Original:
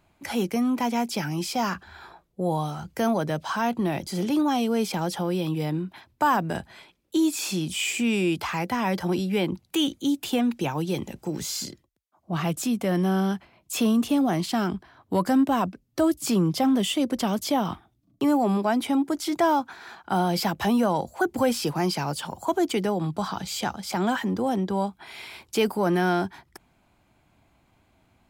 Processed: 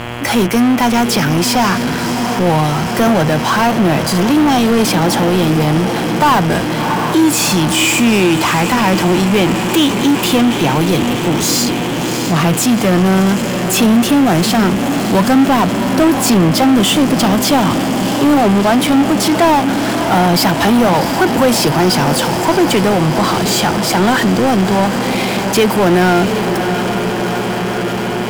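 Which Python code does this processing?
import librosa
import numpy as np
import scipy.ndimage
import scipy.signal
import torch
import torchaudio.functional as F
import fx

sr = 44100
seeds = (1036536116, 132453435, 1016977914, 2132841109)

y = fx.echo_diffused(x, sr, ms=682, feedback_pct=74, wet_db=-12.0)
y = fx.power_curve(y, sr, exponent=0.5)
y = fx.dmg_buzz(y, sr, base_hz=120.0, harmonics=28, level_db=-32.0, tilt_db=-3, odd_only=False)
y = F.gain(torch.from_numpy(y), 6.5).numpy()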